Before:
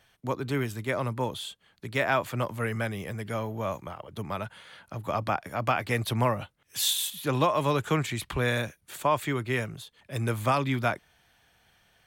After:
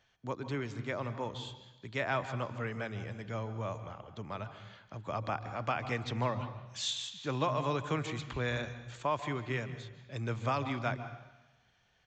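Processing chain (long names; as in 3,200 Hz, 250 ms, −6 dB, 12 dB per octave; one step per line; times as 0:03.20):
on a send at −11 dB: convolution reverb RT60 1.1 s, pre-delay 139 ms
on the sum: downsampling to 16,000 Hz
level −7.5 dB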